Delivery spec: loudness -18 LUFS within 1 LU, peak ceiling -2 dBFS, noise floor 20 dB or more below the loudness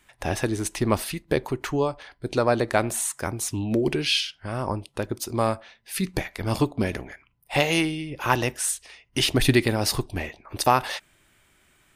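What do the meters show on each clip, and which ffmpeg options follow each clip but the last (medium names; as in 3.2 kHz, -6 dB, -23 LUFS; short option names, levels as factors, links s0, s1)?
loudness -25.5 LUFS; peak level -6.0 dBFS; loudness target -18.0 LUFS
-> -af "volume=2.37,alimiter=limit=0.794:level=0:latency=1"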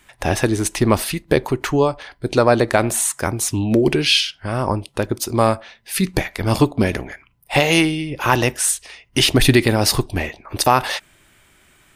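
loudness -18.5 LUFS; peak level -2.0 dBFS; noise floor -55 dBFS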